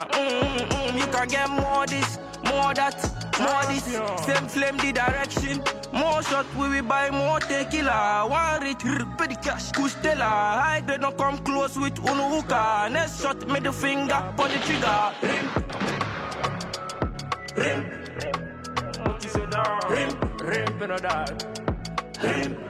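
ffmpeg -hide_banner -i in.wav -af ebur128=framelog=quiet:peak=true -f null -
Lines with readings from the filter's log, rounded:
Integrated loudness:
  I:         -25.2 LUFS
  Threshold: -35.2 LUFS
Loudness range:
  LRA:         4.0 LU
  Threshold: -45.2 LUFS
  LRA low:   -27.9 LUFS
  LRA high:  -23.9 LUFS
True peak:
  Peak:       -8.8 dBFS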